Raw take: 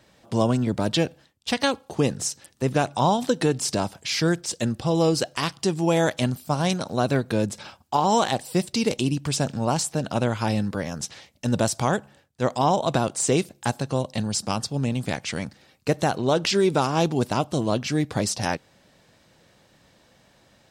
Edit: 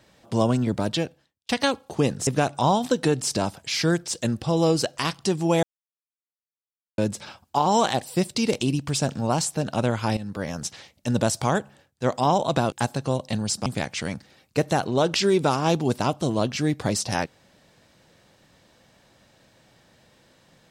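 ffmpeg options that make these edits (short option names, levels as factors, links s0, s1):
-filter_complex "[0:a]asplit=8[s0][s1][s2][s3][s4][s5][s6][s7];[s0]atrim=end=1.49,asetpts=PTS-STARTPTS,afade=t=out:st=0.75:d=0.74[s8];[s1]atrim=start=1.49:end=2.272,asetpts=PTS-STARTPTS,afade=t=in:d=0.004:c=hsin[s9];[s2]atrim=start=2.648:end=6.01,asetpts=PTS-STARTPTS,afade=t=out:st=3.358:d=0.004:c=hsin[s10];[s3]atrim=start=6.01:end=7.36,asetpts=PTS-STARTPTS,volume=0[s11];[s4]atrim=start=7.36:end=10.55,asetpts=PTS-STARTPTS,afade=t=in:d=0.004:c=hsin,afade=t=out:st=3.186:d=0.004:c=hsin:silence=0.188365[s12];[s5]atrim=start=10.55:end=13.102,asetpts=PTS-STARTPTS,afade=t=in:d=0.31:silence=0.188365[s13];[s6]atrim=start=13.568:end=14.512[s14];[s7]atrim=start=14.968[s15];[s8][s9]concat=n=2:v=0:a=1[s16];[s10][s11][s12][s13]concat=n=4:v=0:a=1[s17];[s16][s17]acrossfade=d=0.004:c1=hsin:c2=hsin[s18];[s18][s14]acrossfade=d=0.004:c1=hsin:c2=hsin[s19];[s19][s15]acrossfade=d=0.004:c1=hsin:c2=hsin"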